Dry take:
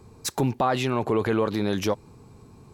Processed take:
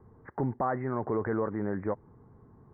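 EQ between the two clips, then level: steep low-pass 2000 Hz 96 dB/oct; -6.5 dB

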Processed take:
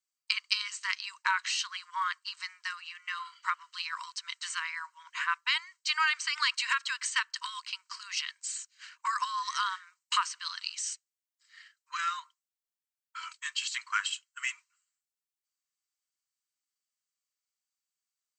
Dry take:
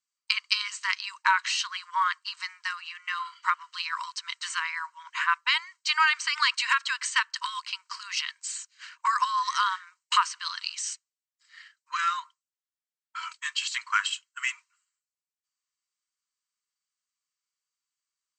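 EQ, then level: HPF 980 Hz; high shelf 7000 Hz +5 dB; -4.5 dB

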